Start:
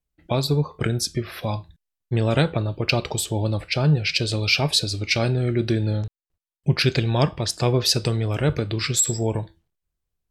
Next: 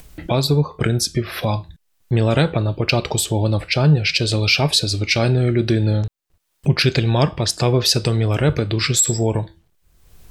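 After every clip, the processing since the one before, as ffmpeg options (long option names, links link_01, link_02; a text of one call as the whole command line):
ffmpeg -i in.wav -filter_complex "[0:a]asplit=2[link_01][link_02];[link_02]alimiter=limit=-15dB:level=0:latency=1:release=122,volume=-0.5dB[link_03];[link_01][link_03]amix=inputs=2:normalize=0,acompressor=mode=upward:threshold=-19dB:ratio=2.5" out.wav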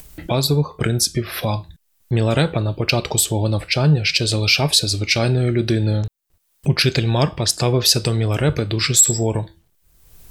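ffmpeg -i in.wav -af "highshelf=frequency=7300:gain=9.5,volume=-1dB" out.wav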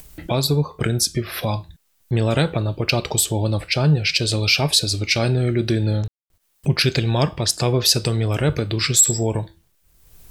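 ffmpeg -i in.wav -af "acrusher=bits=10:mix=0:aa=0.000001,volume=-1.5dB" out.wav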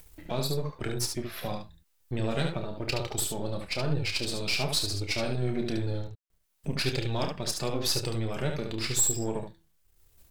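ffmpeg -i in.wav -af "aeval=exprs='if(lt(val(0),0),0.447*val(0),val(0))':channel_layout=same,flanger=delay=2.2:depth=3.2:regen=-38:speed=1:shape=sinusoidal,aecho=1:1:30|72:0.376|0.531,volume=-6dB" out.wav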